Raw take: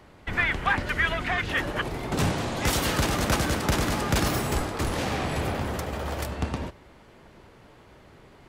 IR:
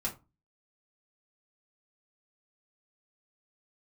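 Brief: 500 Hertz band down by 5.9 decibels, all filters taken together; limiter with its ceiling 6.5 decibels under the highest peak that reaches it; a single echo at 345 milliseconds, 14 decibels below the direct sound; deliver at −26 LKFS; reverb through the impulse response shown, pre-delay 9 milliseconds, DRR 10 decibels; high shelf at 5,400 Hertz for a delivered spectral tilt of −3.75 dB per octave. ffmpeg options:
-filter_complex "[0:a]equalizer=frequency=500:width_type=o:gain=-8,highshelf=frequency=5400:gain=7.5,alimiter=limit=-17dB:level=0:latency=1,aecho=1:1:345:0.2,asplit=2[link_01][link_02];[1:a]atrim=start_sample=2205,adelay=9[link_03];[link_02][link_03]afir=irnorm=-1:irlink=0,volume=-13dB[link_04];[link_01][link_04]amix=inputs=2:normalize=0,volume=1.5dB"

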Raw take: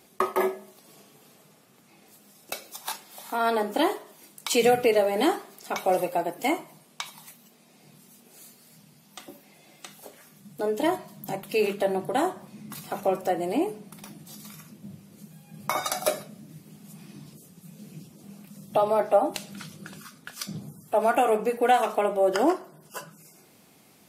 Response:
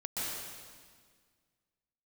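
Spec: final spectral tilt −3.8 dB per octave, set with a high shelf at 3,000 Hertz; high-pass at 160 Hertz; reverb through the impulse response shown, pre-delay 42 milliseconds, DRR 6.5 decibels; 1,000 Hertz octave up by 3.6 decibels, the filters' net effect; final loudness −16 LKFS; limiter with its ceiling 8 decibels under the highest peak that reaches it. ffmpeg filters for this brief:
-filter_complex "[0:a]highpass=160,equalizer=frequency=1000:width_type=o:gain=5,highshelf=frequency=3000:gain=3.5,alimiter=limit=-14dB:level=0:latency=1,asplit=2[link_01][link_02];[1:a]atrim=start_sample=2205,adelay=42[link_03];[link_02][link_03]afir=irnorm=-1:irlink=0,volume=-11dB[link_04];[link_01][link_04]amix=inputs=2:normalize=0,volume=10dB"

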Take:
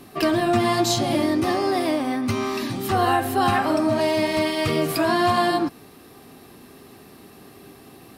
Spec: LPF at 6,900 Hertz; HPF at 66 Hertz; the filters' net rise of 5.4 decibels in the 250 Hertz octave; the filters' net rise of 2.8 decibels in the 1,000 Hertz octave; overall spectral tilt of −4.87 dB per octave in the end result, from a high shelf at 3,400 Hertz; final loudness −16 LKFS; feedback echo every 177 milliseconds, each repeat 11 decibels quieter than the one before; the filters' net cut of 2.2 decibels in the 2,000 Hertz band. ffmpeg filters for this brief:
ffmpeg -i in.wav -af "highpass=66,lowpass=6900,equalizer=frequency=250:width_type=o:gain=7,equalizer=frequency=1000:width_type=o:gain=4,equalizer=frequency=2000:width_type=o:gain=-6.5,highshelf=frequency=3400:gain=8.5,aecho=1:1:177|354|531:0.282|0.0789|0.0221,volume=2dB" out.wav

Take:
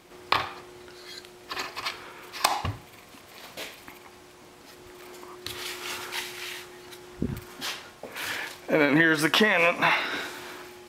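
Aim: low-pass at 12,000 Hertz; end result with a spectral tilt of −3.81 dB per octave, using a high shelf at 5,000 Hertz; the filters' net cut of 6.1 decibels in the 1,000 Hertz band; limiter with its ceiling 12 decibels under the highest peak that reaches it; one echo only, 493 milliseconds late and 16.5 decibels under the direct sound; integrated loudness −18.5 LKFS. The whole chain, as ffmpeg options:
ffmpeg -i in.wav -af "lowpass=12000,equalizer=frequency=1000:width_type=o:gain=-8,highshelf=frequency=5000:gain=5,alimiter=limit=-18dB:level=0:latency=1,aecho=1:1:493:0.15,volume=13.5dB" out.wav

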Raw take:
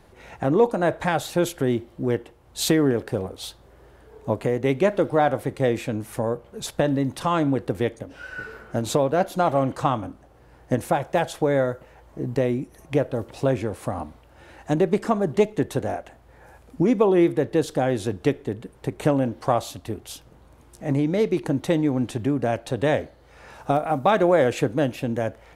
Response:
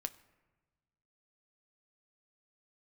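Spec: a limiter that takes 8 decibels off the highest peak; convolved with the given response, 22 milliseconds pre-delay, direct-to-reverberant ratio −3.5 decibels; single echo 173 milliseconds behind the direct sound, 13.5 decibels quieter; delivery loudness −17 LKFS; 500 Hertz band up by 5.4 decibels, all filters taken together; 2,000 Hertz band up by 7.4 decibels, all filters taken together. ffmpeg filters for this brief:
-filter_complex "[0:a]equalizer=frequency=500:width_type=o:gain=6,equalizer=frequency=2000:width_type=o:gain=9,alimiter=limit=-10dB:level=0:latency=1,aecho=1:1:173:0.211,asplit=2[link_01][link_02];[1:a]atrim=start_sample=2205,adelay=22[link_03];[link_02][link_03]afir=irnorm=-1:irlink=0,volume=5dB[link_04];[link_01][link_04]amix=inputs=2:normalize=0,volume=0.5dB"

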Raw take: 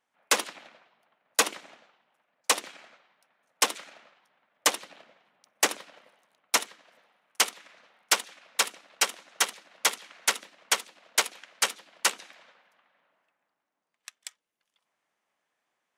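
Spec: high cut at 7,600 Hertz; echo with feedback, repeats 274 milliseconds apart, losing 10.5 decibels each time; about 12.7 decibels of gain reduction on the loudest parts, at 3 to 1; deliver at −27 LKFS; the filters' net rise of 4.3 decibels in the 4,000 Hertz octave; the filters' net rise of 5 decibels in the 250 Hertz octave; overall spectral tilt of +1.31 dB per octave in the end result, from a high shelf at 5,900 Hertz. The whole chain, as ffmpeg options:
ffmpeg -i in.wav -af "lowpass=7600,equalizer=frequency=250:width_type=o:gain=6.5,equalizer=frequency=4000:width_type=o:gain=8,highshelf=frequency=5900:gain=-5.5,acompressor=threshold=-35dB:ratio=3,aecho=1:1:274|548|822:0.299|0.0896|0.0269,volume=11.5dB" out.wav

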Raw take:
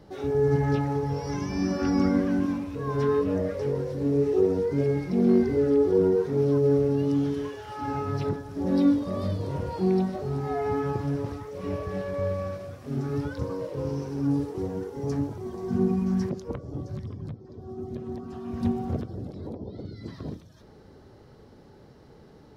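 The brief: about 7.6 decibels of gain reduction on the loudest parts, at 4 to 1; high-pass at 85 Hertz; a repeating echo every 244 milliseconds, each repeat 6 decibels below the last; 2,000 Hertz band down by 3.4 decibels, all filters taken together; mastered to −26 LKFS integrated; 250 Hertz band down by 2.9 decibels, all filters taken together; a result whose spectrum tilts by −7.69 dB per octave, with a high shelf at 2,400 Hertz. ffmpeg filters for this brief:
ffmpeg -i in.wav -af "highpass=85,equalizer=frequency=250:width_type=o:gain=-3.5,equalizer=frequency=2000:width_type=o:gain=-6.5,highshelf=frequency=2400:gain=4.5,acompressor=threshold=-27dB:ratio=4,aecho=1:1:244|488|732|976|1220|1464:0.501|0.251|0.125|0.0626|0.0313|0.0157,volume=5.5dB" out.wav

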